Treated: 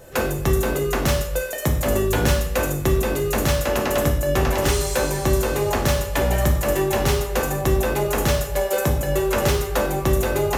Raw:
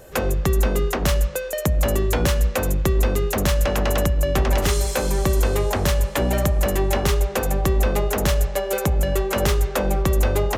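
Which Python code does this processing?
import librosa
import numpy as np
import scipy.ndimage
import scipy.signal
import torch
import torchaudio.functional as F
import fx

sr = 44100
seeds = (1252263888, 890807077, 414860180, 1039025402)

y = fx.rev_gated(x, sr, seeds[0], gate_ms=180, shape='falling', drr_db=0.0)
y = y * 10.0 ** (-1.5 / 20.0)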